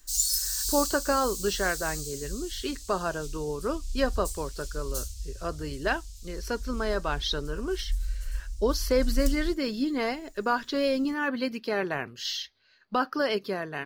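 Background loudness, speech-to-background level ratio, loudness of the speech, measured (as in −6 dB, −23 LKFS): −34.0 LKFS, 4.0 dB, −30.0 LKFS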